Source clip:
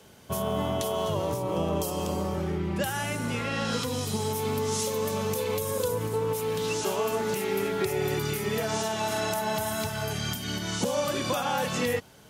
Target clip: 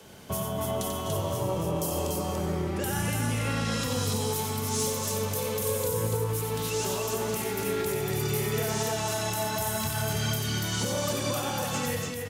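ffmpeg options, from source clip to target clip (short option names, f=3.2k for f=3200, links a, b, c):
-filter_complex "[0:a]acrossover=split=130|5700[a][b][c];[b]alimiter=level_in=3dB:limit=-24dB:level=0:latency=1:release=338,volume=-3dB[d];[a][d][c]amix=inputs=3:normalize=0,asoftclip=type=tanh:threshold=-24.5dB,aecho=1:1:90.38|288.6:0.562|0.708,volume=3dB"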